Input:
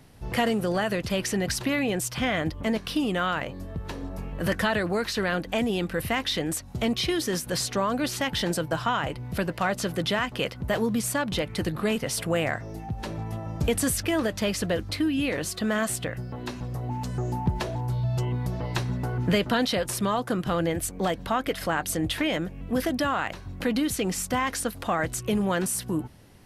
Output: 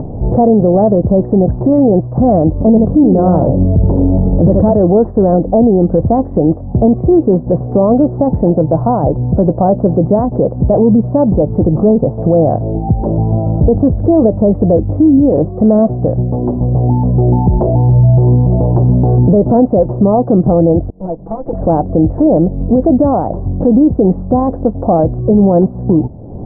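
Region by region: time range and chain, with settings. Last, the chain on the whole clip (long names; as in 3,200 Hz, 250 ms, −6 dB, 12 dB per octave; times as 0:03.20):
0:02.67–0:04.73: low-shelf EQ 370 Hz +6.5 dB + single-tap delay 76 ms −7 dB
0:20.90–0:21.53: lower of the sound and its delayed copy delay 6 ms + first-order pre-emphasis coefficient 0.8 + multiband upward and downward expander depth 70%
whole clip: Butterworth low-pass 750 Hz 36 dB per octave; upward compression, threshold −33 dBFS; boost into a limiter +21.5 dB; level −1 dB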